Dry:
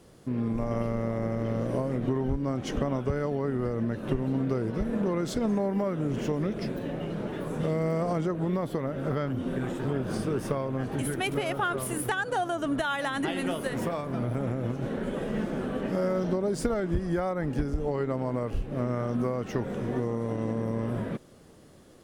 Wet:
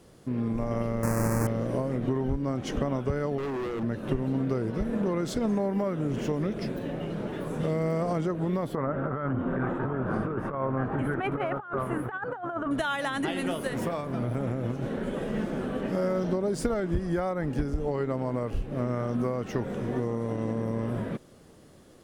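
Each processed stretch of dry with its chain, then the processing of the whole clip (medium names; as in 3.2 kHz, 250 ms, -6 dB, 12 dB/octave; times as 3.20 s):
1.03–1.47 s: square wave that keeps the level + Butterworth band-stop 3.4 kHz, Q 0.85 + peaking EQ 10 kHz +5 dB 0.82 oct
3.38–3.83 s: peaking EQ 350 Hz +10 dB 0.71 oct + hum notches 60/120/180/240/300 Hz + hard clipper -30 dBFS
8.75–12.71 s: FFT filter 460 Hz 0 dB, 1.3 kHz +8 dB, 5.2 kHz -23 dB + compressor with a negative ratio -29 dBFS, ratio -0.5
whole clip: none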